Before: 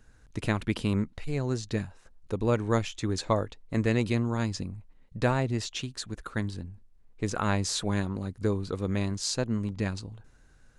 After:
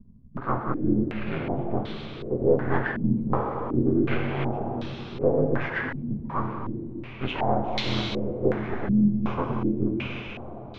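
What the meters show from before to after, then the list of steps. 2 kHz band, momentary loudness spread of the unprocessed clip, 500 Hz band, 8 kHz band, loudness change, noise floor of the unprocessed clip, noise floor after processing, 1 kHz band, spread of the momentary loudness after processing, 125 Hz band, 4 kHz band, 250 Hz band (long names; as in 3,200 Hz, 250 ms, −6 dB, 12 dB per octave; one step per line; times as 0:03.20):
+3.5 dB, 11 LU, +5.0 dB, below −20 dB, +3.0 dB, −58 dBFS, −39 dBFS, +5.5 dB, 11 LU, +0.5 dB, 0.0 dB, +5.0 dB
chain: partials spread apart or drawn together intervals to 78%
half-wave rectification
in parallel at +2 dB: downward compressor, threshold −43 dBFS, peak gain reduction 19 dB
on the sum: dense smooth reverb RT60 4.6 s, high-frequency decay 0.95×, DRR 1 dB
low-pass on a step sequencer 2.7 Hz 210–4,000 Hz
level +1.5 dB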